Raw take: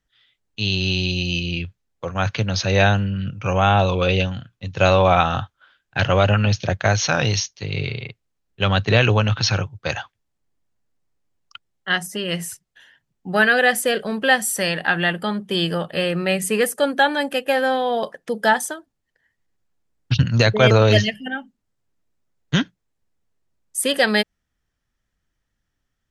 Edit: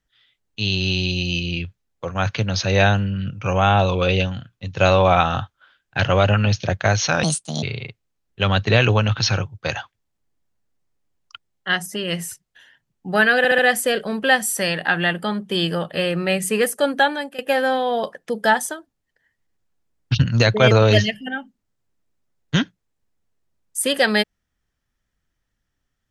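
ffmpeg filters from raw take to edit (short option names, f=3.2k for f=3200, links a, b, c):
-filter_complex "[0:a]asplit=7[a][b][c][d][e][f][g];[a]atrim=end=7.234[h];[b]atrim=start=7.23:end=7.83,asetpts=PTS-STARTPTS,asetrate=67032,aresample=44100[i];[c]atrim=start=7.826:end=13.652[j];[d]atrim=start=13.578:end=13.652[k];[e]atrim=start=13.578:end=13.652[l];[f]atrim=start=13.578:end=17.38,asetpts=PTS-STARTPTS,afade=t=out:st=3.432:d=0.37:silence=0.133352[m];[g]atrim=start=17.38,asetpts=PTS-STARTPTS,afade=t=in:d=0.004:c=hsin:silence=0.133352[n];[h][i]acrossfade=d=0.004:c1=hsin:c2=hsin[o];[o][j]acrossfade=d=0.004:c1=hsin:c2=hsin[p];[p][k]acrossfade=d=0.004:c1=hsin:c2=hsin[q];[q][l]acrossfade=d=0.004:c1=hsin:c2=hsin[r];[m][n]concat=n=2:v=0:a=1[s];[r][s]acrossfade=d=0.004:c1=hsin:c2=hsin"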